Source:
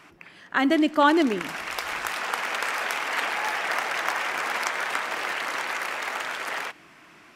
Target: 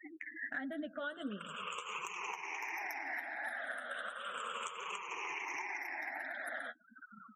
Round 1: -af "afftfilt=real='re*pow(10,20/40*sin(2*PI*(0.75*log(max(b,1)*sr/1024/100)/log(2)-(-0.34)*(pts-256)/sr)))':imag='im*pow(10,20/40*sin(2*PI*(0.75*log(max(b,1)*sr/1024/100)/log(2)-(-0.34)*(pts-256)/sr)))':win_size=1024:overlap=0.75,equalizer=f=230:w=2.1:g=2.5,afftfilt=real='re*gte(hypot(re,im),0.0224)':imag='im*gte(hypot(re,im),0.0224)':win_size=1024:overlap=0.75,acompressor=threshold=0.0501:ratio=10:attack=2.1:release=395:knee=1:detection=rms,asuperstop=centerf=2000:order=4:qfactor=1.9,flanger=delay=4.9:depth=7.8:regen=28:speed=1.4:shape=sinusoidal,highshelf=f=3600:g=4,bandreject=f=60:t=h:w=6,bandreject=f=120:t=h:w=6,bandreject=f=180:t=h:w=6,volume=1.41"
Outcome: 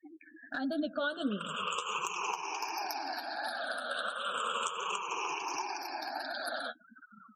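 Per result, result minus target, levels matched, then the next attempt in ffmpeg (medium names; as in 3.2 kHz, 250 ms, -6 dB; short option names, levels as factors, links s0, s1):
compression: peak gain reduction -8 dB; 4 kHz band +4.5 dB
-af "afftfilt=real='re*pow(10,20/40*sin(2*PI*(0.75*log(max(b,1)*sr/1024/100)/log(2)-(-0.34)*(pts-256)/sr)))':imag='im*pow(10,20/40*sin(2*PI*(0.75*log(max(b,1)*sr/1024/100)/log(2)-(-0.34)*(pts-256)/sr)))':win_size=1024:overlap=0.75,equalizer=f=230:w=2.1:g=2.5,afftfilt=real='re*gte(hypot(re,im),0.0224)':imag='im*gte(hypot(re,im),0.0224)':win_size=1024:overlap=0.75,acompressor=threshold=0.0178:ratio=10:attack=2.1:release=395:knee=1:detection=rms,asuperstop=centerf=2000:order=4:qfactor=1.9,flanger=delay=4.9:depth=7.8:regen=28:speed=1.4:shape=sinusoidal,highshelf=f=3600:g=4,bandreject=f=60:t=h:w=6,bandreject=f=120:t=h:w=6,bandreject=f=180:t=h:w=6,volume=1.41"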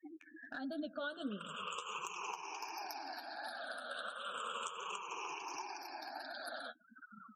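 4 kHz band +4.5 dB
-af "afftfilt=real='re*pow(10,20/40*sin(2*PI*(0.75*log(max(b,1)*sr/1024/100)/log(2)-(-0.34)*(pts-256)/sr)))':imag='im*pow(10,20/40*sin(2*PI*(0.75*log(max(b,1)*sr/1024/100)/log(2)-(-0.34)*(pts-256)/sr)))':win_size=1024:overlap=0.75,equalizer=f=230:w=2.1:g=2.5,afftfilt=real='re*gte(hypot(re,im),0.0224)':imag='im*gte(hypot(re,im),0.0224)':win_size=1024:overlap=0.75,acompressor=threshold=0.0178:ratio=10:attack=2.1:release=395:knee=1:detection=rms,asuperstop=centerf=4500:order=4:qfactor=1.9,flanger=delay=4.9:depth=7.8:regen=28:speed=1.4:shape=sinusoidal,highshelf=f=3600:g=4,bandreject=f=60:t=h:w=6,bandreject=f=120:t=h:w=6,bandreject=f=180:t=h:w=6,volume=1.41"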